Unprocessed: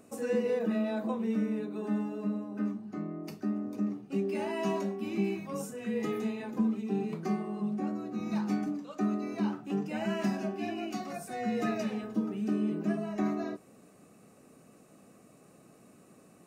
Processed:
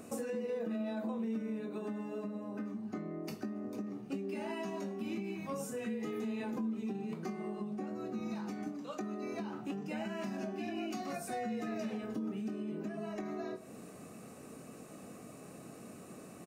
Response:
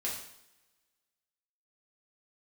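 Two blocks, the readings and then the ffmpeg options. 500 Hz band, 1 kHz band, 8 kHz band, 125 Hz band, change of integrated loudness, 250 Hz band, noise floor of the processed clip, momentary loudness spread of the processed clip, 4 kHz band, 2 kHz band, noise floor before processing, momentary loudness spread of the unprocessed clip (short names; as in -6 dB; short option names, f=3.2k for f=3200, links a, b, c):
-5.5 dB, -5.0 dB, -1.0 dB, -7.5 dB, -6.5 dB, -6.5 dB, -52 dBFS, 13 LU, -4.0 dB, -5.0 dB, -59 dBFS, 6 LU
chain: -filter_complex "[0:a]asplit=2[a][b];[1:a]atrim=start_sample=2205[c];[b][c]afir=irnorm=-1:irlink=0,volume=-18dB[d];[a][d]amix=inputs=2:normalize=0,alimiter=level_in=4.5dB:limit=-24dB:level=0:latency=1:release=153,volume=-4.5dB,acompressor=threshold=-46dB:ratio=2.5,asplit=2[e][f];[f]adelay=22,volume=-10dB[g];[e][g]amix=inputs=2:normalize=0,volume=6dB"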